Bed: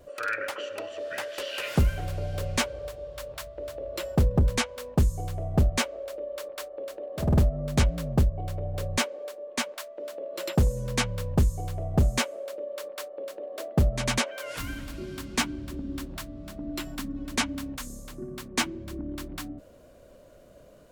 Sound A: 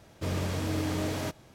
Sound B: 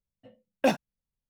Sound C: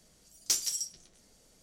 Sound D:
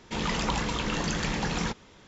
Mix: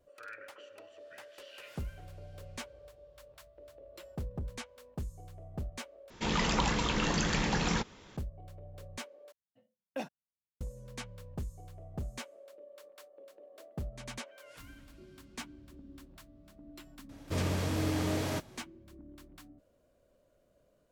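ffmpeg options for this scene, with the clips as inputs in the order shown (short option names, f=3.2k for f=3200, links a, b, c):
-filter_complex "[0:a]volume=-17dB[a];[2:a]highpass=98[b];[a]asplit=3[c][d][e];[c]atrim=end=6.104[f];[4:a]atrim=end=2.07,asetpts=PTS-STARTPTS,volume=-1dB[g];[d]atrim=start=8.166:end=9.324[h];[b]atrim=end=1.29,asetpts=PTS-STARTPTS,volume=-15dB[i];[e]atrim=start=10.606[j];[1:a]atrim=end=1.54,asetpts=PTS-STARTPTS,volume=-1dB,afade=t=in:d=0.004:c=hsin,afade=t=out:st=1.536:d=0.004:c=hsin,adelay=17090[k];[f][g]acrossfade=d=0.004:c1=hsin:c2=hsin[l];[l][h]acrossfade=d=0.004:c1=hsin:c2=hsin[m];[m][i]acrossfade=d=0.004:c1=hsin:c2=hsin[n];[n][j]acrossfade=d=0.004:c1=hsin:c2=hsin[o];[o][k]amix=inputs=2:normalize=0"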